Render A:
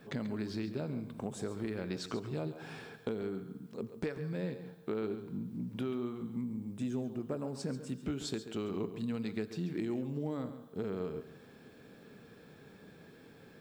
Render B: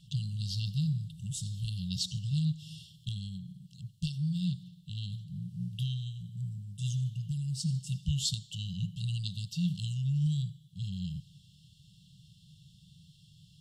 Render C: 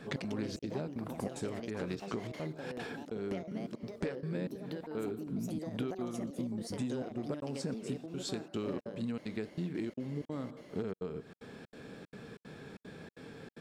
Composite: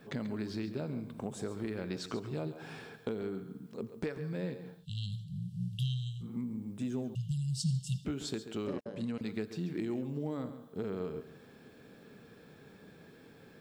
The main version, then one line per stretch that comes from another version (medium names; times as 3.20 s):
A
4.81–6.25 s: from B, crossfade 0.10 s
7.15–8.05 s: from B
8.67–9.21 s: from C